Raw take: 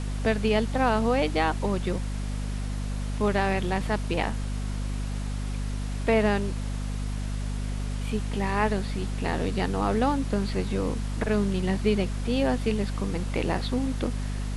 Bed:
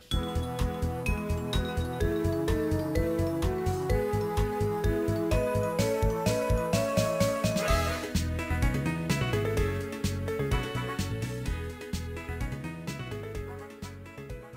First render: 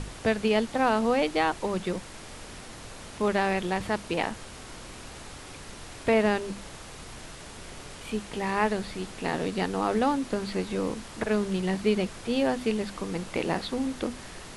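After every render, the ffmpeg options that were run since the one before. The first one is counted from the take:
-af "bandreject=f=50:t=h:w=6,bandreject=f=100:t=h:w=6,bandreject=f=150:t=h:w=6,bandreject=f=200:t=h:w=6,bandreject=f=250:t=h:w=6"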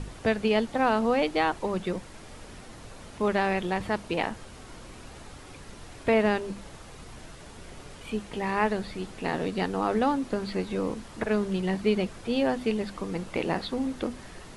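-af "afftdn=nr=6:nf=-44"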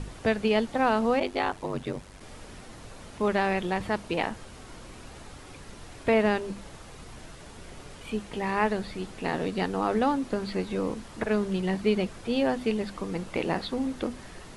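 -filter_complex "[0:a]asplit=3[s0][s1][s2];[s0]afade=t=out:st=1.19:d=0.02[s3];[s1]aeval=exprs='val(0)*sin(2*PI*48*n/s)':c=same,afade=t=in:st=1.19:d=0.02,afade=t=out:st=2.19:d=0.02[s4];[s2]afade=t=in:st=2.19:d=0.02[s5];[s3][s4][s5]amix=inputs=3:normalize=0"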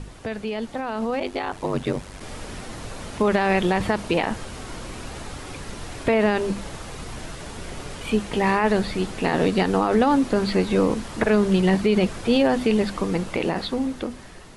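-af "alimiter=limit=0.1:level=0:latency=1:release=45,dynaudnorm=f=460:g=7:m=3.16"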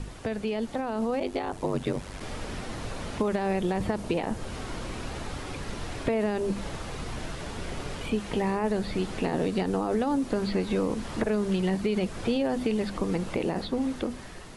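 -filter_complex "[0:a]acrossover=split=760|5600[s0][s1][s2];[s0]acompressor=threshold=0.0562:ratio=4[s3];[s1]acompressor=threshold=0.0112:ratio=4[s4];[s2]acompressor=threshold=0.00224:ratio=4[s5];[s3][s4][s5]amix=inputs=3:normalize=0"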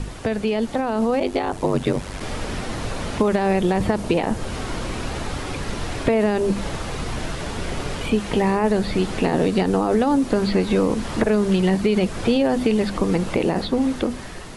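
-af "volume=2.51"

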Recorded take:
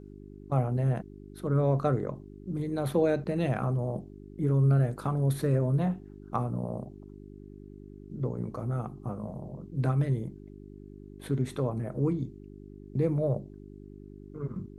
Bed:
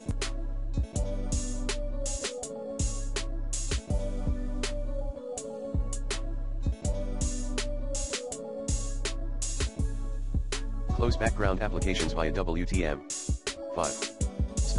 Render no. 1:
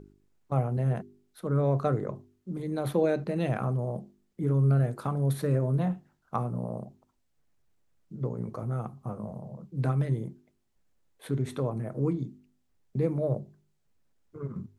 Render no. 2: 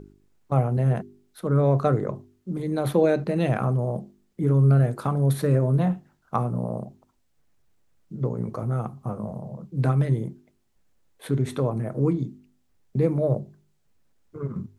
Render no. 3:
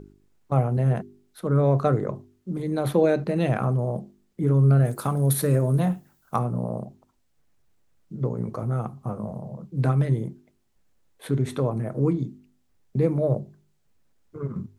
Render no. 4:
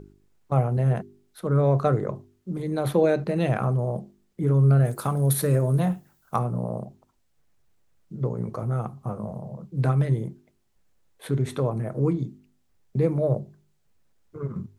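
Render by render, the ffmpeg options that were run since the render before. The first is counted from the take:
-af "bandreject=f=50:t=h:w=4,bandreject=f=100:t=h:w=4,bandreject=f=150:t=h:w=4,bandreject=f=200:t=h:w=4,bandreject=f=250:t=h:w=4,bandreject=f=300:t=h:w=4,bandreject=f=350:t=h:w=4,bandreject=f=400:t=h:w=4"
-af "volume=1.88"
-filter_complex "[0:a]asettb=1/sr,asplit=3[s0][s1][s2];[s0]atrim=end=4.854[s3];[s1]atrim=start=4.85:end=6.39,asetpts=PTS-STARTPTS,afade=t=in:d=0.004:c=qsin,afade=t=out:st=1.536:d=0.004:c=qsin,aemphasis=mode=production:type=50fm[s4];[s2]atrim=start=6.386[s5];[s3][s4]acrossfade=d=0.004:c1=hsin:c2=qsin[s6];[s6][s5]acrossfade=d=0.004:c1=qsin:c2=hsin"
-af "equalizer=f=260:w=2.8:g=-3.5"

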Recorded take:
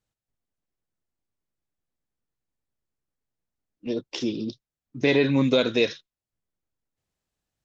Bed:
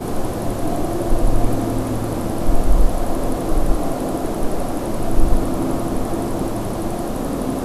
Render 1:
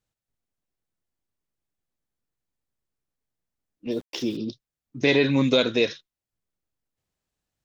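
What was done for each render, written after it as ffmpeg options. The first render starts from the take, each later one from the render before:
-filter_complex "[0:a]asettb=1/sr,asplit=3[s0][s1][s2];[s0]atrim=end=3.914[s3];[s1]atrim=start=3.91:end=4.37,asetpts=PTS-STARTPTS,afade=t=in:d=0.004:c=qsin,afade=t=out:st=0.456:d=0.004:c=qsin,aeval=exprs='val(0)*gte(abs(val(0)),0.00631)':c=same[s4];[s2]atrim=start=4.366[s5];[s3][s4]acrossfade=d=0.004:c1=hsin:c2=qsin[s6];[s6][s5]acrossfade=d=0.004:c1=qsin:c2=hsin,asettb=1/sr,asplit=3[s7][s8][s9];[s7]atrim=end=5.004[s10];[s8]atrim=start=5:end=5.65,asetpts=PTS-STARTPTS,afade=t=in:d=0.004:c=qsin,afade=t=out:st=0.646:d=0.004:c=qsin,highshelf=f=2400:g=5[s11];[s9]atrim=start=5.646[s12];[s10][s11]acrossfade=d=0.004:c1=hsin:c2=qsin[s13];[s13][s12]acrossfade=d=0.004:c1=qsin:c2=hsin"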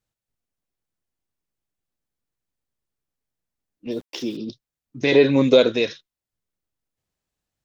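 -filter_complex "[0:a]asettb=1/sr,asplit=3[s0][s1][s2];[s0]atrim=end=4.034[s3];[s1]atrim=start=4.03:end=4.49,asetpts=PTS-STARTPTS,afade=t=in:d=0.004:c=qsin,afade=t=out:st=0.456:d=0.004:c=qsin,highpass=140[s4];[s2]atrim=start=4.486[s5];[s3][s4]acrossfade=d=0.004:c1=hsin:c2=qsin[s6];[s6][s5]acrossfade=d=0.004:c1=qsin:c2=hsin,asettb=1/sr,asplit=3[s7][s8][s9];[s7]atrim=end=5.124[s10];[s8]atrim=start=5.12:end=5.72,asetpts=PTS-STARTPTS,afade=t=in:d=0.004:c=qsin,afade=t=out:st=0.596:d=0.004:c=qsin,equalizer=f=480:t=o:w=1.3:g=8.5[s11];[s9]atrim=start=5.716[s12];[s10][s11]acrossfade=d=0.004:c1=hsin:c2=qsin[s13];[s13][s12]acrossfade=d=0.004:c1=qsin:c2=hsin"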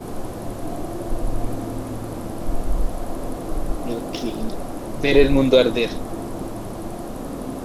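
-filter_complex "[1:a]volume=0.422[s0];[0:a][s0]amix=inputs=2:normalize=0"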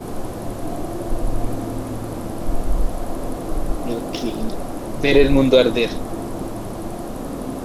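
-af "volume=1.26,alimiter=limit=0.794:level=0:latency=1"

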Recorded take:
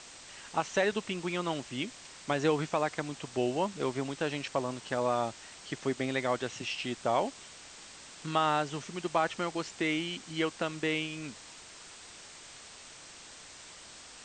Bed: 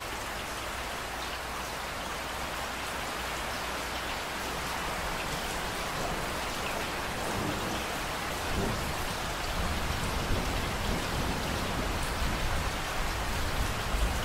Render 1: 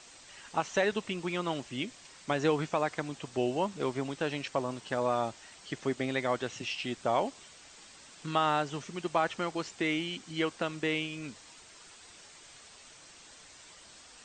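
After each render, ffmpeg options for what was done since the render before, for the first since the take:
-af "afftdn=nr=6:nf=-51"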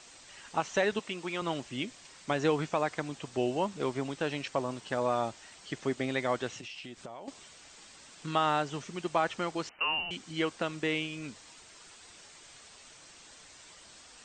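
-filter_complex "[0:a]asettb=1/sr,asplit=3[s0][s1][s2];[s0]atrim=end=0.994[s3];[s1]atrim=start=0.99:end=1.42,asetpts=PTS-STARTPTS,afade=t=in:d=0.004:c=qsin,afade=t=out:st=0.426:d=0.004:c=qsin,highpass=f=310:p=1[s4];[s2]atrim=start=1.416[s5];[s3][s4]acrossfade=d=0.004:c1=hsin:c2=qsin[s6];[s6][s5]acrossfade=d=0.004:c1=qsin:c2=hsin,asettb=1/sr,asplit=3[s7][s8][s9];[s7]atrim=end=6.554[s10];[s8]atrim=start=6.55:end=7.28,asetpts=PTS-STARTPTS,afade=t=in:d=0.004:c=qsin,afade=t=out:st=0.726:d=0.004:c=qsin,acompressor=threshold=0.01:ratio=12:attack=3.2:release=140:knee=1:detection=peak[s11];[s9]atrim=start=7.276[s12];[s10][s11]acrossfade=d=0.004:c1=hsin:c2=qsin[s13];[s13][s12]acrossfade=d=0.004:c1=qsin:c2=hsin,asettb=1/sr,asplit=3[s14][s15][s16];[s14]atrim=end=9.694[s17];[s15]atrim=start=9.69:end=10.11,asetpts=PTS-STARTPTS,afade=t=in:d=0.004:c=qsin,afade=t=out:st=0.416:d=0.004:c=qsin,lowpass=f=2600:t=q:w=0.5098,lowpass=f=2600:t=q:w=0.6013,lowpass=f=2600:t=q:w=0.9,lowpass=f=2600:t=q:w=2.563,afreqshift=-3100[s18];[s16]atrim=start=10.106[s19];[s17][s18]acrossfade=d=0.004:c1=hsin:c2=qsin[s20];[s20][s19]acrossfade=d=0.004:c1=qsin:c2=hsin"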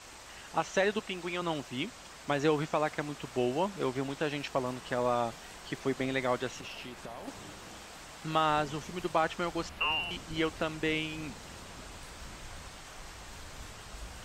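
-filter_complex "[1:a]volume=0.158[s0];[0:a][s0]amix=inputs=2:normalize=0"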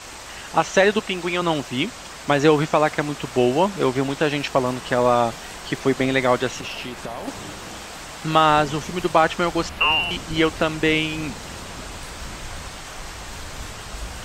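-af "volume=3.98"

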